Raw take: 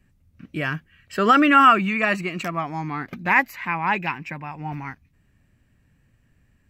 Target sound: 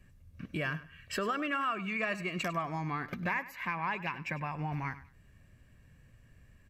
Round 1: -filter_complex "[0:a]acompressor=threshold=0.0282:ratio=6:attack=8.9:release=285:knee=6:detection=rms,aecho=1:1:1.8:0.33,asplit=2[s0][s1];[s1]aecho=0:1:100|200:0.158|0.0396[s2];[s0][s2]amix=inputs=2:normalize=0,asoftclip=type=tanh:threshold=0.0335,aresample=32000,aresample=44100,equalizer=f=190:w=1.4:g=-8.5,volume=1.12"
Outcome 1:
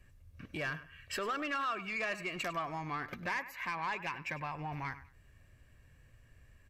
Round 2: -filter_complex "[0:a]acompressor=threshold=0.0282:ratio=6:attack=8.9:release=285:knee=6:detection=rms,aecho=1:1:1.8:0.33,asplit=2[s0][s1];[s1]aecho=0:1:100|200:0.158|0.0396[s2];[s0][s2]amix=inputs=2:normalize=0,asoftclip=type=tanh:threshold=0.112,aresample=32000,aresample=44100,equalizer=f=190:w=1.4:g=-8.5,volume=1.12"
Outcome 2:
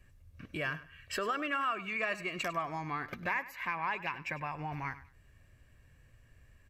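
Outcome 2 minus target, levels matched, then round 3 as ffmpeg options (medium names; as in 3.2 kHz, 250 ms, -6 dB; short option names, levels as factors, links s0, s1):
250 Hz band -4.5 dB
-filter_complex "[0:a]acompressor=threshold=0.0282:ratio=6:attack=8.9:release=285:knee=6:detection=rms,aecho=1:1:1.8:0.33,asplit=2[s0][s1];[s1]aecho=0:1:100|200:0.158|0.0396[s2];[s0][s2]amix=inputs=2:normalize=0,asoftclip=type=tanh:threshold=0.112,aresample=32000,aresample=44100,volume=1.12"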